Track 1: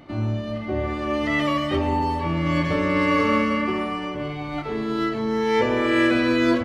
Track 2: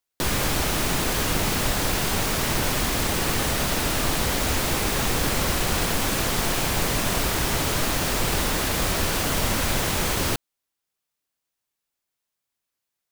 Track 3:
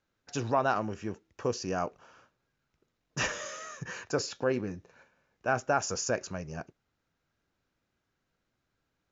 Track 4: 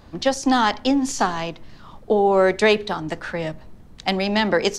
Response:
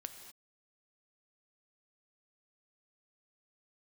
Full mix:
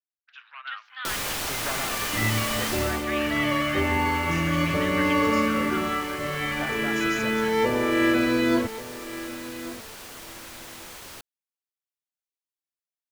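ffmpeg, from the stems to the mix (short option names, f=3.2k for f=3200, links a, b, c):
-filter_complex "[0:a]adelay=900,volume=0.5dB,asplit=2[a][b];[b]volume=-3dB[c];[1:a]lowshelf=f=380:g=-11.5,adelay=850,volume=-3.5dB,afade=t=out:st=2.72:d=0.34:silence=0.251189[d];[2:a]agate=range=-33dB:threshold=-59dB:ratio=3:detection=peak,asoftclip=type=tanh:threshold=-21dB,volume=-0.5dB,asplit=2[e][f];[f]volume=-6.5dB[g];[3:a]adelay=450,volume=-9dB[h];[a][e][h]amix=inputs=3:normalize=0,asuperpass=centerf=2100:order=8:qfactor=0.96,alimiter=limit=-22dB:level=0:latency=1,volume=0dB[i];[c][g]amix=inputs=2:normalize=0,aecho=0:1:1136|2272|3408:1|0.18|0.0324[j];[d][i][j]amix=inputs=3:normalize=0"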